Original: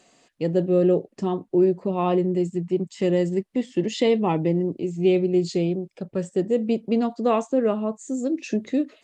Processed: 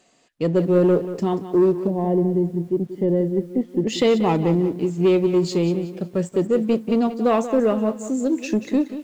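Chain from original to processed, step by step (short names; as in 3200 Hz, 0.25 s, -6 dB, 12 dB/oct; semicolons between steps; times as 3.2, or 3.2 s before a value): sample leveller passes 1; 1.87–3.87 running mean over 34 samples; lo-fi delay 0.184 s, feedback 35%, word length 8-bit, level -12 dB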